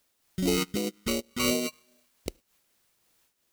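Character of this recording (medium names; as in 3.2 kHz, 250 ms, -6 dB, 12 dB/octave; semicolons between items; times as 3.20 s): aliases and images of a low sample rate 1.7 kHz, jitter 0%; phasing stages 2, 2.7 Hz, lowest notch 590–1200 Hz; a quantiser's noise floor 12-bit, dither triangular; random flutter of the level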